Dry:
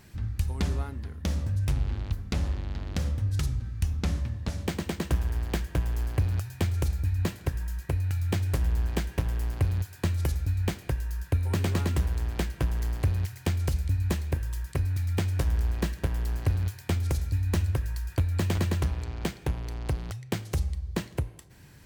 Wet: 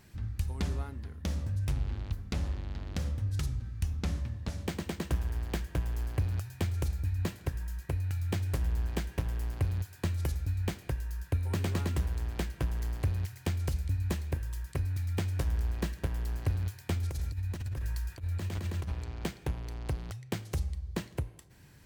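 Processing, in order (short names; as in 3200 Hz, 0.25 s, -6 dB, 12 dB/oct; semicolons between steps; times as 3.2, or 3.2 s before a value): 17.03–18.93 negative-ratio compressor -28 dBFS, ratio -0.5; gain -4.5 dB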